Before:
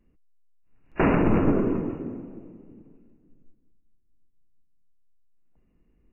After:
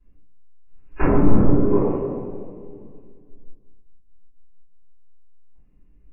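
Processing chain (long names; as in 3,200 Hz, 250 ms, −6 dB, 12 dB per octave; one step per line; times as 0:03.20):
treble cut that deepens with the level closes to 1,100 Hz, closed at −17.5 dBFS
gain on a spectral selection 0:01.71–0:03.89, 360–1,200 Hz +11 dB
rectangular room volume 49 cubic metres, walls mixed, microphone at 3.2 metres
level −12.5 dB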